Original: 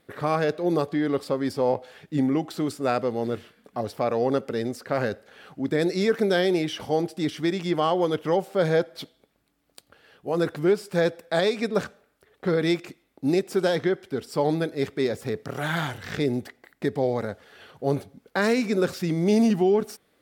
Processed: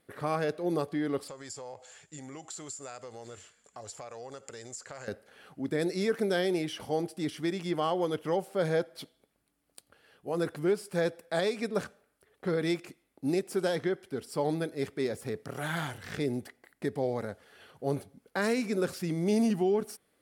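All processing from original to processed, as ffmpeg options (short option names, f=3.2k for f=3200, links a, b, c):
-filter_complex "[0:a]asettb=1/sr,asplit=3[a][b][c];[a]atrim=end=1.284[d];[b]atrim=start=1.28:end=5.08,asetpts=PTS-STARTPTS,afade=t=in:d=0.004:c=qsin,afade=t=out:st=3.796:d=0.004:c=qsin,lowpass=f=7.2k:t=q:w=15,equalizer=f=240:t=o:w=1.7:g=-13.5,acompressor=threshold=-34dB:ratio=4:attack=3.2:release=140:knee=1:detection=peak[e];[c]atrim=start=5.076[f];[d][e]acrossfade=d=0.004:c1=hsin:c2=qsin[g];[g][f]acrossfade=d=0.004:c1=qsin:c2=hsin,equalizer=f=10k:t=o:w=0.55:g=8.5,bandreject=f=3.7k:w=24,volume=-6.5dB"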